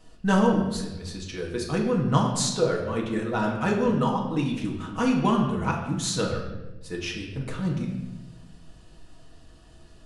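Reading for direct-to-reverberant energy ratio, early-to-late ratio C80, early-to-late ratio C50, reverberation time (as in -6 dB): -1.5 dB, 7.0 dB, 5.0 dB, 1.1 s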